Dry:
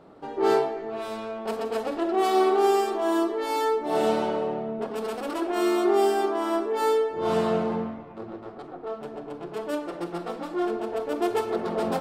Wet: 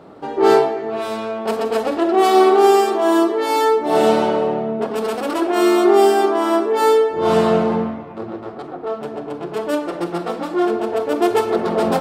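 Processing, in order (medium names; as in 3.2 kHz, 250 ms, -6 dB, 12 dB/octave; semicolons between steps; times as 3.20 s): high-pass 56 Hz; trim +9 dB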